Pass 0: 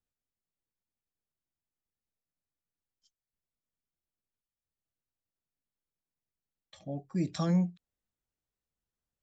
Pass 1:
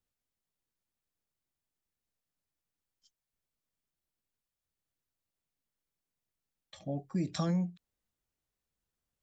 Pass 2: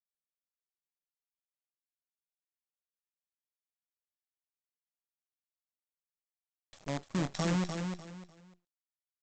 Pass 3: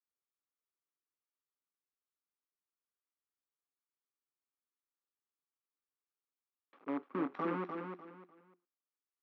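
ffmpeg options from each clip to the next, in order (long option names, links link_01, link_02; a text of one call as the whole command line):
ffmpeg -i in.wav -af "acompressor=threshold=-32dB:ratio=3,volume=2.5dB" out.wav
ffmpeg -i in.wav -af "aresample=16000,acrusher=bits=6:dc=4:mix=0:aa=0.000001,aresample=44100,aecho=1:1:299|598|897:0.501|0.135|0.0365,volume=-1.5dB" out.wav
ffmpeg -i in.wav -af "highpass=frequency=260:width=0.5412,highpass=frequency=260:width=1.3066,equalizer=frequency=270:width_type=q:width=4:gain=7,equalizer=frequency=400:width_type=q:width=4:gain=5,equalizer=frequency=650:width_type=q:width=4:gain=-9,equalizer=frequency=1200:width_type=q:width=4:gain=7,equalizer=frequency=1800:width_type=q:width=4:gain=-5,lowpass=frequency=2100:width=0.5412,lowpass=frequency=2100:width=1.3066,volume=-1.5dB" out.wav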